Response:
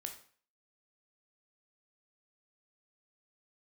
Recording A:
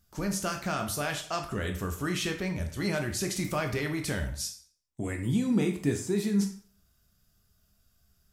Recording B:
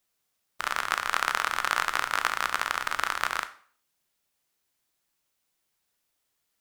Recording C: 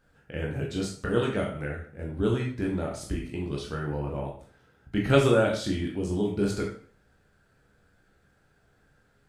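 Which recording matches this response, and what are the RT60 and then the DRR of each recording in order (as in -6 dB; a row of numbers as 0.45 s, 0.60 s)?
A; 0.45 s, 0.45 s, 0.45 s; 4.0 dB, 10.0 dB, -1.5 dB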